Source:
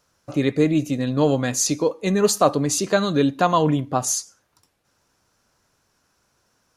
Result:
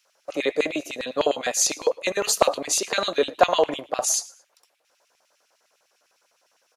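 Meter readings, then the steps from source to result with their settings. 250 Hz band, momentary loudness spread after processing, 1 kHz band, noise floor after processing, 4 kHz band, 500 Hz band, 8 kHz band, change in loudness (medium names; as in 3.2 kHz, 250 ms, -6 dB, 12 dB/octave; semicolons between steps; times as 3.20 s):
-13.0 dB, 7 LU, -2.0 dB, -69 dBFS, +2.5 dB, -2.0 dB, +0.5 dB, -2.5 dB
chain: LFO high-pass square 9.9 Hz 570–2500 Hz; frequency-shifting echo 112 ms, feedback 33%, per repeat +53 Hz, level -23 dB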